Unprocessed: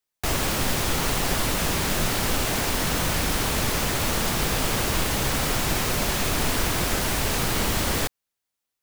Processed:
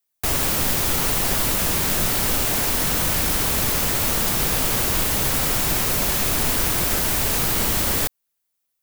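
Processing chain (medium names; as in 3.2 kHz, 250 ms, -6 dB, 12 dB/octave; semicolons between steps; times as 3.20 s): treble shelf 9.6 kHz +11.5 dB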